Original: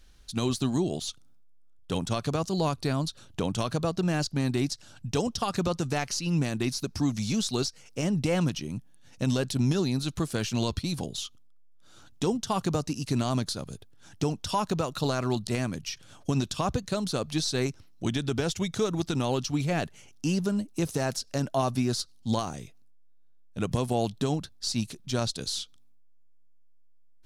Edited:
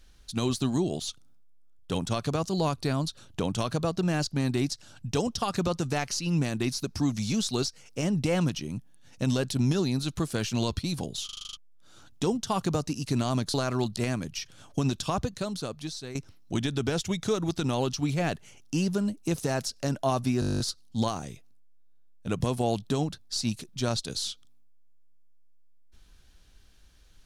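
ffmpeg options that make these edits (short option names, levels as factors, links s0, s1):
-filter_complex "[0:a]asplit=21[s0][s1][s2][s3][s4][s5][s6][s7][s8][s9][s10][s11][s12][s13][s14][s15][s16][s17][s18][s19][s20];[s0]atrim=end=11.292[s21];[s1]atrim=start=11.248:end=11.292[s22];[s2]atrim=start=11.248:end=11.292[s23];[s3]atrim=start=11.248:end=11.292[s24];[s4]atrim=start=11.248:end=11.292[s25];[s5]atrim=start=11.248:end=11.292[s26];[s6]atrim=start=11.248:end=11.292[s27];[s7]atrim=start=11.248:end=11.292[s28];[s8]atrim=start=11.568:end=13.542[s29];[s9]atrim=start=15.048:end=17.66,asetpts=PTS-STARTPTS,afade=t=out:st=1.522:d=1.09:silence=0.199526[s30];[s10]atrim=start=17.66:end=21.932,asetpts=PTS-STARTPTS,afade=t=in:d=0.004:c=hsin:silence=0.199526[s31];[s11]atrim=start=21.908:end=21.932[s32];[s12]atrim=start=21.908:end=21.932[s33];[s13]atrim=start=21.908:end=21.932[s34];[s14]atrim=start=21.908:end=21.932[s35];[s15]atrim=start=21.908:end=21.932[s36];[s16]atrim=start=21.908:end=21.932[s37];[s17]atrim=start=21.908:end=21.932[s38];[s18]atrim=start=21.908:end=21.932[s39];[s19]atrim=start=21.908:end=21.932[s40];[s20]atrim=start=21.908[s41];[s21][s22]acrossfade=d=0.004:c1=hsin:c2=hsin[s42];[s42][s23]acrossfade=d=0.004:c1=hsin:c2=hsin[s43];[s43][s24]acrossfade=d=0.004:c1=hsin:c2=hsin[s44];[s44][s25]acrossfade=d=0.004:c1=hsin:c2=hsin[s45];[s45][s26]acrossfade=d=0.004:c1=hsin:c2=hsin[s46];[s46][s27]acrossfade=d=0.004:c1=hsin:c2=hsin[s47];[s47][s28]acrossfade=d=0.004:c1=hsin:c2=hsin[s48];[s48][s29]acrossfade=d=0.004:c1=hsin:c2=hsin[s49];[s30][s31]concat=n=2:v=0:a=1[s50];[s49][s50]acrossfade=d=0.004:c1=hsin:c2=hsin[s51];[s51][s32]acrossfade=d=0.004:c1=hsin:c2=hsin[s52];[s52][s33]acrossfade=d=0.004:c1=hsin:c2=hsin[s53];[s53][s34]acrossfade=d=0.004:c1=hsin:c2=hsin[s54];[s54][s35]acrossfade=d=0.004:c1=hsin:c2=hsin[s55];[s55][s36]acrossfade=d=0.004:c1=hsin:c2=hsin[s56];[s56][s37]acrossfade=d=0.004:c1=hsin:c2=hsin[s57];[s57][s38]acrossfade=d=0.004:c1=hsin:c2=hsin[s58];[s58][s39]acrossfade=d=0.004:c1=hsin:c2=hsin[s59];[s59][s40]acrossfade=d=0.004:c1=hsin:c2=hsin[s60];[s60][s41]acrossfade=d=0.004:c1=hsin:c2=hsin"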